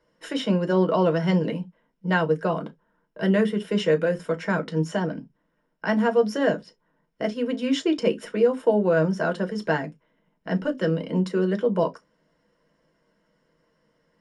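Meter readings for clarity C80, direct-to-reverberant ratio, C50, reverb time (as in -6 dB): 38.5 dB, 4.5 dB, 25.5 dB, not exponential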